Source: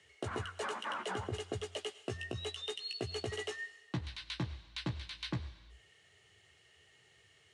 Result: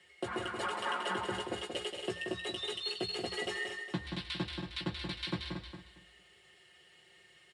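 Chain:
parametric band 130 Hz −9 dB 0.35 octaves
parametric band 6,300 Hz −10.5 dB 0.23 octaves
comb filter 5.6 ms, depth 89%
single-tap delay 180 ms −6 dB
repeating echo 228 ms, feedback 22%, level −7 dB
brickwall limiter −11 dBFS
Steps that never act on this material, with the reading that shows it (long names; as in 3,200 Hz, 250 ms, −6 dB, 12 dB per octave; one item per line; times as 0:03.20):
brickwall limiter −11 dBFS: peak of its input −20.5 dBFS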